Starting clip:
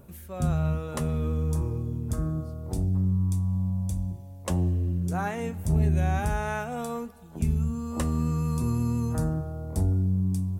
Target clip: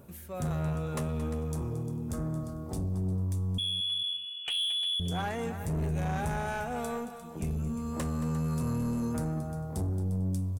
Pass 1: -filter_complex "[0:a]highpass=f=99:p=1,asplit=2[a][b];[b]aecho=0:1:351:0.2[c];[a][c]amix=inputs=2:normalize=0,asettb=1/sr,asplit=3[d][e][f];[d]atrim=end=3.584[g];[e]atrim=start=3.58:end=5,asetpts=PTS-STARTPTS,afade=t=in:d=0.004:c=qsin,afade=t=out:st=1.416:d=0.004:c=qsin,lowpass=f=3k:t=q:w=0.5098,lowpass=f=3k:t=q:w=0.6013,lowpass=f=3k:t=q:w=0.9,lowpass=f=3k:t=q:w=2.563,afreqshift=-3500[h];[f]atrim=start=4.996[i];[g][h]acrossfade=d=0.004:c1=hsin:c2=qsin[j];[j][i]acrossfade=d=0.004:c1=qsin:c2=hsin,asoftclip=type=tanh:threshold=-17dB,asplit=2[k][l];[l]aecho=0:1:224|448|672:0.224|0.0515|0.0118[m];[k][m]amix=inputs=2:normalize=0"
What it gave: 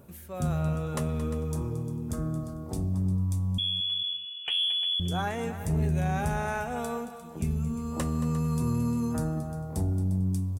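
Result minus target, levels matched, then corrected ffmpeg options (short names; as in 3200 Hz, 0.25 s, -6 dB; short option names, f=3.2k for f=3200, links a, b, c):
soft clip: distortion -13 dB
-filter_complex "[0:a]highpass=f=99:p=1,asplit=2[a][b];[b]aecho=0:1:351:0.2[c];[a][c]amix=inputs=2:normalize=0,asettb=1/sr,asplit=3[d][e][f];[d]atrim=end=3.584[g];[e]atrim=start=3.58:end=5,asetpts=PTS-STARTPTS,afade=t=in:d=0.004:c=qsin,afade=t=out:st=1.416:d=0.004:c=qsin,lowpass=f=3k:t=q:w=0.5098,lowpass=f=3k:t=q:w=0.6013,lowpass=f=3k:t=q:w=0.9,lowpass=f=3k:t=q:w=2.563,afreqshift=-3500[h];[f]atrim=start=4.996[i];[g][h]acrossfade=d=0.004:c1=hsin:c2=qsin[j];[j][i]acrossfade=d=0.004:c1=qsin:c2=hsin,asoftclip=type=tanh:threshold=-27dB,asplit=2[k][l];[l]aecho=0:1:224|448|672:0.224|0.0515|0.0118[m];[k][m]amix=inputs=2:normalize=0"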